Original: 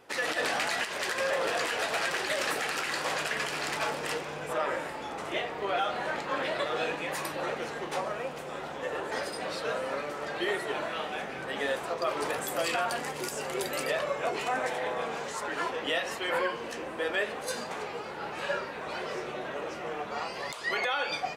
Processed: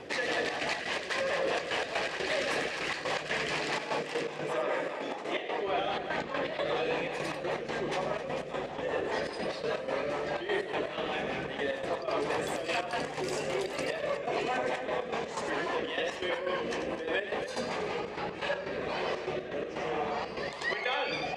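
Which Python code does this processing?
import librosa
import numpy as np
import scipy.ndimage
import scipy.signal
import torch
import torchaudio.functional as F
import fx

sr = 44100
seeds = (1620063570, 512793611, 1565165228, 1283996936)

y = fx.air_absorb(x, sr, metres=82.0)
y = y + 10.0 ** (-5.0 / 20.0) * np.pad(y, (int(92 * sr / 1000.0), 0))[:len(y)]
y = fx.step_gate(y, sr, bpm=123, pattern='xxxx.x.x.', floor_db=-12.0, edge_ms=4.5)
y = fx.peak_eq(y, sr, hz=1400.0, db=-10.0, octaves=0.22)
y = y + 10.0 ** (-15.5 / 20.0) * np.pad(y, (int(265 * sr / 1000.0), 0))[:len(y)]
y = fx.rotary_switch(y, sr, hz=5.0, then_hz=1.2, switch_at_s=17.87)
y = fx.highpass(y, sr, hz=fx.line((3.61, 120.0), (5.66, 290.0)), slope=12, at=(3.61, 5.66), fade=0.02)
y = fx.env_flatten(y, sr, amount_pct=50)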